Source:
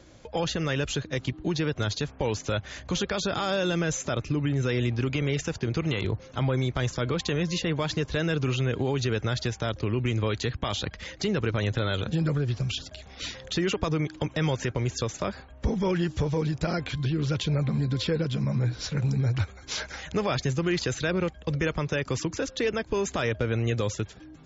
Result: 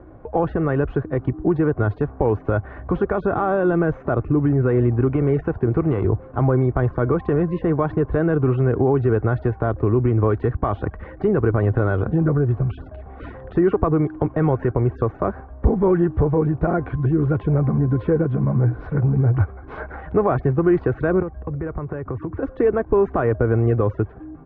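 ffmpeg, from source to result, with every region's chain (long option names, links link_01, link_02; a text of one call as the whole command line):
ffmpeg -i in.wav -filter_complex "[0:a]asettb=1/sr,asplit=3[link_01][link_02][link_03];[link_01]atrim=end=21.224[link_04];[link_02]atrim=start=21.22:end=22.43,asetpts=PTS-STARTPTS,afade=type=in:duration=0.004:curve=qsin,afade=type=out:start_time=1.206:duration=0.004:curve=qsin,lowpass=2900,equalizer=frequency=92:width_type=o:width=0.93:gain=7.5,acompressor=threshold=-34dB:ratio=3:attack=3.2:release=140:knee=1:detection=peak[link_05];[link_03]atrim=start=22.426[link_06];[link_04][link_05]acrossfade=duration=0.004:curve1=hsin:curve2=qsin[link_07];[link_07][link_06]acrossfade=duration=0.004:curve1=qsin:curve2=hsin,lowpass=frequency=1300:width=0.5412,lowpass=frequency=1300:width=1.3066,aecho=1:1:2.7:0.32,volume=9dB" out.wav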